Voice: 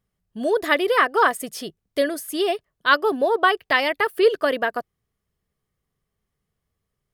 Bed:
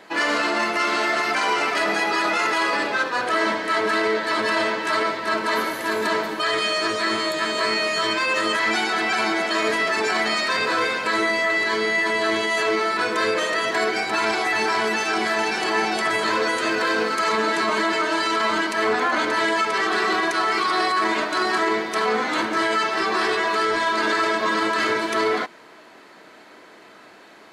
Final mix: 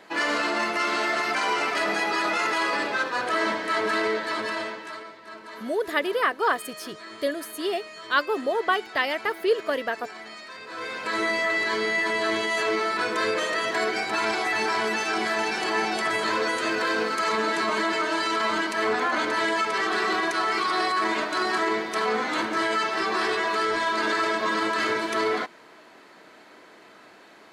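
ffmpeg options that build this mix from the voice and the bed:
-filter_complex "[0:a]adelay=5250,volume=0.531[s0];[1:a]volume=3.98,afade=t=out:st=4.05:d=0.98:silence=0.16788,afade=t=in:st=10.67:d=0.62:silence=0.16788[s1];[s0][s1]amix=inputs=2:normalize=0"

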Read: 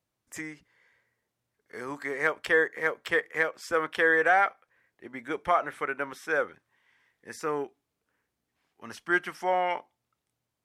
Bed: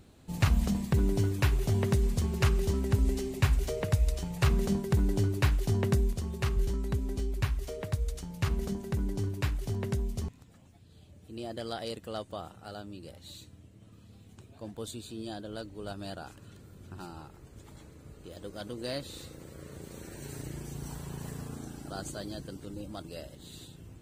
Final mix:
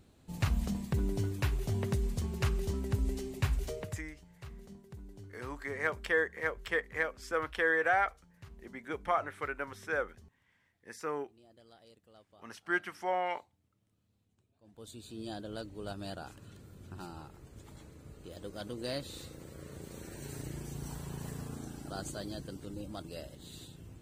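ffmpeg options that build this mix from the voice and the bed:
-filter_complex "[0:a]adelay=3600,volume=0.501[s0];[1:a]volume=5.96,afade=t=out:st=3.72:d=0.31:silence=0.141254,afade=t=in:st=14.63:d=0.7:silence=0.0891251[s1];[s0][s1]amix=inputs=2:normalize=0"

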